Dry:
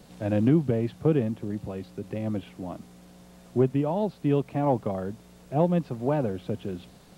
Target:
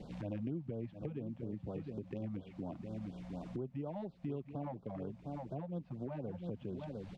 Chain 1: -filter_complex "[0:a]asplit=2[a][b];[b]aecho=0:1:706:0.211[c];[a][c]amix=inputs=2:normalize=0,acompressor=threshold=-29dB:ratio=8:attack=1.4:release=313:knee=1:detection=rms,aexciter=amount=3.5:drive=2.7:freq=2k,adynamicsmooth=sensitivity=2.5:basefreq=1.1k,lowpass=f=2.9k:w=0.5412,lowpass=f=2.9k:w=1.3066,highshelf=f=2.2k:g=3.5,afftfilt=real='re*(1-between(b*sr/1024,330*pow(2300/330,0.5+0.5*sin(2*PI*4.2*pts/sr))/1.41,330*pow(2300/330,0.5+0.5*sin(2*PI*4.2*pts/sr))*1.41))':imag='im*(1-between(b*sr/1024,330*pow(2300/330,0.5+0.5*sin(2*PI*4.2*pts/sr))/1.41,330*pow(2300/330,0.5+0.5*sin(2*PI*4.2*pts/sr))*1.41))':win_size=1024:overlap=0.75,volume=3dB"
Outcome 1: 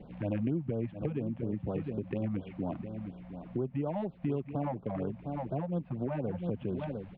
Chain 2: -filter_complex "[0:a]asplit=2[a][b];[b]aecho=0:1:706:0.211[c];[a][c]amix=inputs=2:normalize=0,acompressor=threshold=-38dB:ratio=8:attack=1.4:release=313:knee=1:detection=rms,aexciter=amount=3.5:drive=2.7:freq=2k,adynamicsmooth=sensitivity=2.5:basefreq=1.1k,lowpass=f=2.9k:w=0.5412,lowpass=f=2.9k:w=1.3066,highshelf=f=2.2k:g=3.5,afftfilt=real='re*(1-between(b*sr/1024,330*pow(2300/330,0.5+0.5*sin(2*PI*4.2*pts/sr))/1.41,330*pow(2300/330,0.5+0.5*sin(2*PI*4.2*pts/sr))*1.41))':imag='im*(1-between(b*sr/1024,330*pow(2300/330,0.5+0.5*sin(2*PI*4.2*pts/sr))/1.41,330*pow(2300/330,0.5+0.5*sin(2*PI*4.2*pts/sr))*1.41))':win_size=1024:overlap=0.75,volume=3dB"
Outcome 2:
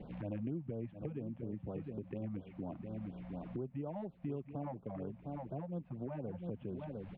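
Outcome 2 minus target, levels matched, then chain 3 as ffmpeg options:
4000 Hz band -5.5 dB
-filter_complex "[0:a]asplit=2[a][b];[b]aecho=0:1:706:0.211[c];[a][c]amix=inputs=2:normalize=0,acompressor=threshold=-38dB:ratio=8:attack=1.4:release=313:knee=1:detection=rms,aexciter=amount=3.5:drive=2.7:freq=2k,adynamicsmooth=sensitivity=2.5:basefreq=1.1k,highshelf=f=2.2k:g=3.5,afftfilt=real='re*(1-between(b*sr/1024,330*pow(2300/330,0.5+0.5*sin(2*PI*4.2*pts/sr))/1.41,330*pow(2300/330,0.5+0.5*sin(2*PI*4.2*pts/sr))*1.41))':imag='im*(1-between(b*sr/1024,330*pow(2300/330,0.5+0.5*sin(2*PI*4.2*pts/sr))/1.41,330*pow(2300/330,0.5+0.5*sin(2*PI*4.2*pts/sr))*1.41))':win_size=1024:overlap=0.75,volume=3dB"

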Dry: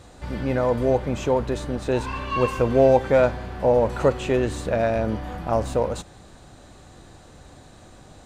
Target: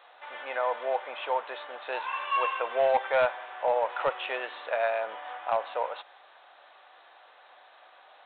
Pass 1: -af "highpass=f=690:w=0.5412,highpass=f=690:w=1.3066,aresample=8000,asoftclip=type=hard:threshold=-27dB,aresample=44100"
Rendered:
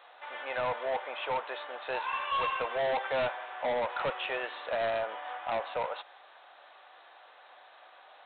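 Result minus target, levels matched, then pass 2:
hard clip: distortion +15 dB
-af "highpass=f=690:w=0.5412,highpass=f=690:w=1.3066,aresample=8000,asoftclip=type=hard:threshold=-17dB,aresample=44100"

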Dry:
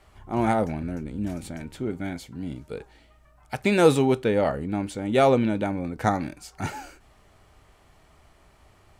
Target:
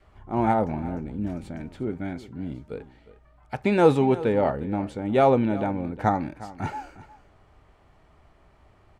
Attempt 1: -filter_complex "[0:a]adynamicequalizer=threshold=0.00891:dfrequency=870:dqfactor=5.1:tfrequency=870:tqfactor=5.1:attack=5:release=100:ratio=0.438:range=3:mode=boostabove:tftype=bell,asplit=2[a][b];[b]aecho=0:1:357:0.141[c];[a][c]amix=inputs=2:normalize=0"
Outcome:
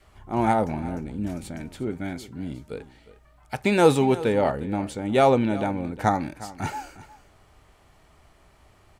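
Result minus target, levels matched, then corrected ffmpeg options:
2000 Hz band +3.0 dB
-filter_complex "[0:a]adynamicequalizer=threshold=0.00891:dfrequency=870:dqfactor=5.1:tfrequency=870:tqfactor=5.1:attack=5:release=100:ratio=0.438:range=3:mode=boostabove:tftype=bell,lowpass=f=1.8k:p=1,asplit=2[a][b];[b]aecho=0:1:357:0.141[c];[a][c]amix=inputs=2:normalize=0"

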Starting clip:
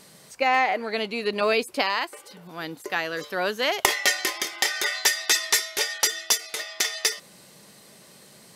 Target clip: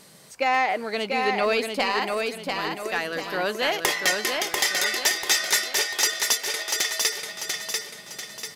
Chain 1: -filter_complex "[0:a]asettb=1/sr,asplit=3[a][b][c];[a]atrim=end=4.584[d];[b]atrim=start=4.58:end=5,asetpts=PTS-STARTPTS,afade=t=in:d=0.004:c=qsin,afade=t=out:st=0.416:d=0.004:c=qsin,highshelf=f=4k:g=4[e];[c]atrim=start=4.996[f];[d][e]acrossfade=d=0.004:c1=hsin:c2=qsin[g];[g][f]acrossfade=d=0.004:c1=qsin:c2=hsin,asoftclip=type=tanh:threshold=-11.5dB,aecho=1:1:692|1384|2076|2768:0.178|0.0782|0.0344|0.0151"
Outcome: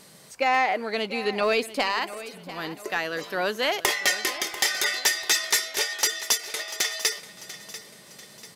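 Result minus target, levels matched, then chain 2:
echo-to-direct -11 dB
-filter_complex "[0:a]asettb=1/sr,asplit=3[a][b][c];[a]atrim=end=4.584[d];[b]atrim=start=4.58:end=5,asetpts=PTS-STARTPTS,afade=t=in:d=0.004:c=qsin,afade=t=out:st=0.416:d=0.004:c=qsin,highshelf=f=4k:g=4[e];[c]atrim=start=4.996[f];[d][e]acrossfade=d=0.004:c1=hsin:c2=qsin[g];[g][f]acrossfade=d=0.004:c1=qsin:c2=hsin,asoftclip=type=tanh:threshold=-11.5dB,aecho=1:1:692|1384|2076|2768|3460|4152:0.631|0.278|0.122|0.0537|0.0236|0.0104"

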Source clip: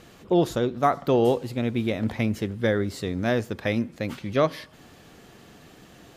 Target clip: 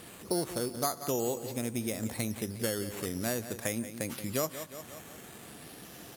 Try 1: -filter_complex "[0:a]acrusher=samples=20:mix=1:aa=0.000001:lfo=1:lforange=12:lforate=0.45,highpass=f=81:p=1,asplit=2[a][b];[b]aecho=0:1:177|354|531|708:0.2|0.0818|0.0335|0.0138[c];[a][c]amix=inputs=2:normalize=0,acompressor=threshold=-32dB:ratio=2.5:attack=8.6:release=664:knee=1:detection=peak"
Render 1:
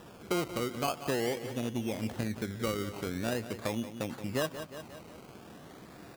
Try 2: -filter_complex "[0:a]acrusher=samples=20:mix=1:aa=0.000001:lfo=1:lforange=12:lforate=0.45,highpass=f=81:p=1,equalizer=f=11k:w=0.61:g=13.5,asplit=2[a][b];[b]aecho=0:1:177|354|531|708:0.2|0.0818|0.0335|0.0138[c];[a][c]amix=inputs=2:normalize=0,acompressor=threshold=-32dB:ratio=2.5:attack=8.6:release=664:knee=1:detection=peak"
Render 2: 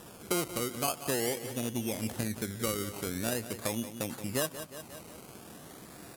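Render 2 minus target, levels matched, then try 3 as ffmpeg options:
decimation with a swept rate: distortion +9 dB
-filter_complex "[0:a]acrusher=samples=7:mix=1:aa=0.000001:lfo=1:lforange=4.2:lforate=0.45,highpass=f=81:p=1,equalizer=f=11k:w=0.61:g=13.5,asplit=2[a][b];[b]aecho=0:1:177|354|531|708:0.2|0.0818|0.0335|0.0138[c];[a][c]amix=inputs=2:normalize=0,acompressor=threshold=-32dB:ratio=2.5:attack=8.6:release=664:knee=1:detection=peak"

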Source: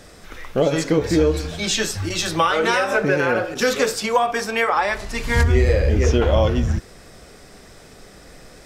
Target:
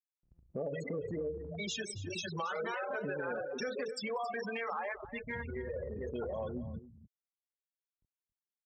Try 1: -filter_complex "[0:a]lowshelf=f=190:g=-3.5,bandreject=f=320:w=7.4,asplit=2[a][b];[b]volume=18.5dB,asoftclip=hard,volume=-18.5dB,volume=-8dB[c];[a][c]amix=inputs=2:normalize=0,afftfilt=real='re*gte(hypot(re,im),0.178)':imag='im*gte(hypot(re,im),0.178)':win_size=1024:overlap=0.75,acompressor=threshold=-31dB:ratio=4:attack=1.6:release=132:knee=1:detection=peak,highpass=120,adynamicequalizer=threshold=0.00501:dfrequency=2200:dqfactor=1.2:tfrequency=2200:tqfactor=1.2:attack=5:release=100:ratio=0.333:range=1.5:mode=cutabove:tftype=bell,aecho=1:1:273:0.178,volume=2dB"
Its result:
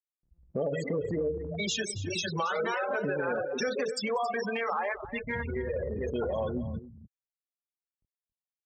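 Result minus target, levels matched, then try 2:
compressor: peak gain reduction -6 dB; overloaded stage: distortion -5 dB
-filter_complex "[0:a]lowshelf=f=190:g=-3.5,bandreject=f=320:w=7.4,asplit=2[a][b];[b]volume=26dB,asoftclip=hard,volume=-26dB,volume=-8dB[c];[a][c]amix=inputs=2:normalize=0,afftfilt=real='re*gte(hypot(re,im),0.178)':imag='im*gte(hypot(re,im),0.178)':win_size=1024:overlap=0.75,acompressor=threshold=-40dB:ratio=4:attack=1.6:release=132:knee=1:detection=peak,highpass=120,adynamicequalizer=threshold=0.00501:dfrequency=2200:dqfactor=1.2:tfrequency=2200:tqfactor=1.2:attack=5:release=100:ratio=0.333:range=1.5:mode=cutabove:tftype=bell,aecho=1:1:273:0.178,volume=2dB"

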